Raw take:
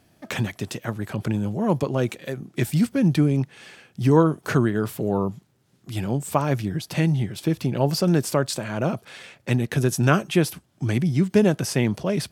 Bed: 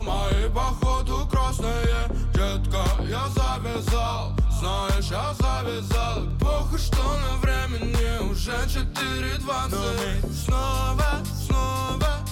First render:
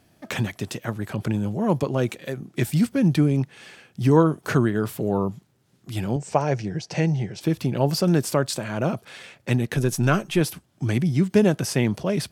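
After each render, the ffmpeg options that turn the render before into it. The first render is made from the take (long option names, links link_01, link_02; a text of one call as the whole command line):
ffmpeg -i in.wav -filter_complex "[0:a]asettb=1/sr,asplit=3[link_01][link_02][link_03];[link_01]atrim=end=6.164[link_04];[link_02]atrim=start=6.16:end=7.41,asetpts=PTS-STARTPTS,afade=type=in:duration=0.004:curve=qsin,afade=type=out:start_time=1.246:duration=0.004:curve=qsin,highpass=110,equalizer=frequency=260:width_type=q:width=4:gain=-8,equalizer=frequency=470:width_type=q:width=4:gain=5,equalizer=frequency=750:width_type=q:width=4:gain=4,equalizer=frequency=1200:width_type=q:width=4:gain=-7,equalizer=frequency=3500:width_type=q:width=4:gain=-8,equalizer=frequency=5800:width_type=q:width=4:gain=5,lowpass=frequency=7000:width=0.5412,lowpass=frequency=7000:width=1.3066[link_05];[link_03]atrim=start=7.406[link_06];[link_04][link_05]acrossfade=duration=0.004:curve1=hsin:curve2=qsin[link_07];[link_07][link_06]acrossfade=duration=0.004:curve1=qsin:curve2=hsin,asettb=1/sr,asplit=3[link_08][link_09][link_10];[link_08]atrim=end=9.764[link_11];[link_09]atrim=start=9.76:end=10.41,asetpts=PTS-STARTPTS,afade=type=in:duration=0.004:curve=qsin,afade=type=out:start_time=0.646:duration=0.004:curve=qsin,aeval=exprs='if(lt(val(0),0),0.708*val(0),val(0))':channel_layout=same[link_12];[link_10]atrim=start=10.406[link_13];[link_11][link_12]acrossfade=duration=0.004:curve1=hsin:curve2=qsin[link_14];[link_14][link_13]acrossfade=duration=0.004:curve1=qsin:curve2=hsin" out.wav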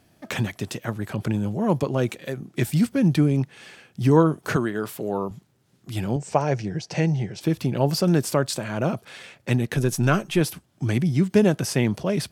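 ffmpeg -i in.wav -filter_complex "[0:a]asettb=1/sr,asplit=3[link_01][link_02][link_03];[link_01]atrim=end=4.564[link_04];[link_02]atrim=start=4.56:end=5.31,asetpts=PTS-STARTPTS,afade=type=in:duration=0.004:curve=qsin,afade=type=out:start_time=0.746:duration=0.004:curve=qsin,highpass=frequency=350:poles=1[link_05];[link_03]atrim=start=5.306[link_06];[link_04][link_05]acrossfade=duration=0.004:curve1=hsin:curve2=qsin[link_07];[link_07][link_06]acrossfade=duration=0.004:curve1=qsin:curve2=hsin" out.wav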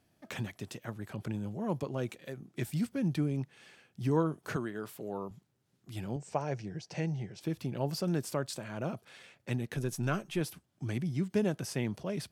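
ffmpeg -i in.wav -af "volume=-12dB" out.wav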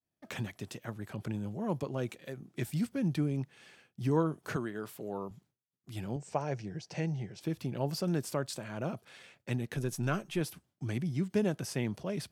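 ffmpeg -i in.wav -af "agate=range=-33dB:threshold=-59dB:ratio=3:detection=peak" out.wav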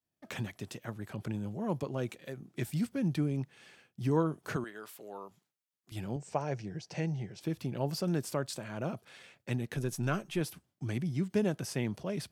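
ffmpeg -i in.wav -filter_complex "[0:a]asettb=1/sr,asplit=3[link_01][link_02][link_03];[link_01]atrim=end=4.644[link_04];[link_02]atrim=start=4.64:end=5.92,asetpts=PTS-STARTPTS,afade=type=in:duration=0.004:curve=qsin,afade=type=out:start_time=1.276:duration=0.004:curve=qsin,highpass=frequency=880:poles=1[link_05];[link_03]atrim=start=5.916[link_06];[link_04][link_05]acrossfade=duration=0.004:curve1=hsin:curve2=qsin[link_07];[link_07][link_06]acrossfade=duration=0.004:curve1=qsin:curve2=hsin" out.wav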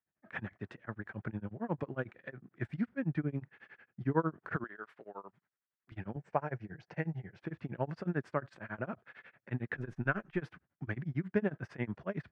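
ffmpeg -i in.wav -af "lowpass=frequency=1700:width_type=q:width=2.9,tremolo=f=11:d=0.97" out.wav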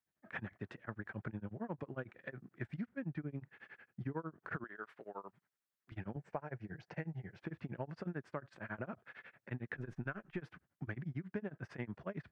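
ffmpeg -i in.wav -af "acompressor=threshold=-39dB:ratio=4" out.wav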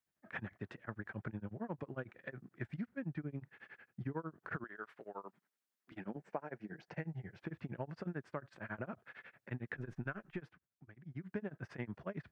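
ffmpeg -i in.wav -filter_complex "[0:a]asettb=1/sr,asplit=3[link_01][link_02][link_03];[link_01]atrim=end=5.254[link_04];[link_02]atrim=start=5.25:end=6.88,asetpts=PTS-STARTPTS,afade=type=in:duration=0.004:curve=qsin,afade=type=out:start_time=1.626:duration=0.004:curve=qsin,lowshelf=frequency=150:width_type=q:width=1.5:gain=-12.5[link_05];[link_03]atrim=start=6.876[link_06];[link_04][link_05]acrossfade=duration=0.004:curve1=hsin:curve2=qsin[link_07];[link_07][link_06]acrossfade=duration=0.004:curve1=qsin:curve2=hsin,asplit=3[link_08][link_09][link_10];[link_08]atrim=end=10.61,asetpts=PTS-STARTPTS,afade=type=out:start_time=10.32:duration=0.29:silence=0.158489[link_11];[link_09]atrim=start=10.61:end=11,asetpts=PTS-STARTPTS,volume=-16dB[link_12];[link_10]atrim=start=11,asetpts=PTS-STARTPTS,afade=type=in:duration=0.29:silence=0.158489[link_13];[link_11][link_12][link_13]concat=n=3:v=0:a=1" out.wav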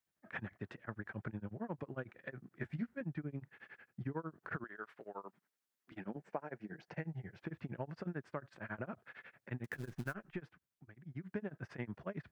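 ffmpeg -i in.wav -filter_complex "[0:a]asettb=1/sr,asplit=3[link_01][link_02][link_03];[link_01]atrim=end=2.584[link_04];[link_02]atrim=start=2.58:end=3.01,asetpts=PTS-STARTPTS,afade=type=in:duration=0.004:curve=qsin,afade=type=out:start_time=0.426:duration=0.004:curve=qsin,asplit=2[link_05][link_06];[link_06]adelay=13,volume=-4.5dB[link_07];[link_05][link_07]amix=inputs=2:normalize=0,atrim=end_sample=18963[link_08];[link_03]atrim=start=3.006[link_09];[link_04][link_08]acrossfade=duration=0.004:curve1=hsin:curve2=qsin[link_10];[link_10][link_09]acrossfade=duration=0.004:curve1=qsin:curve2=hsin,asettb=1/sr,asplit=3[link_11][link_12][link_13];[link_11]atrim=end=9.644[link_14];[link_12]atrim=start=9.64:end=10.14,asetpts=PTS-STARTPTS,afade=type=in:duration=0.004:curve=qsin,afade=type=out:start_time=0.496:duration=0.004:curve=qsin,acrusher=bits=4:mode=log:mix=0:aa=0.000001[link_15];[link_13]atrim=start=10.136[link_16];[link_14][link_15]acrossfade=duration=0.004:curve1=hsin:curve2=qsin[link_17];[link_17][link_16]acrossfade=duration=0.004:curve1=qsin:curve2=hsin" out.wav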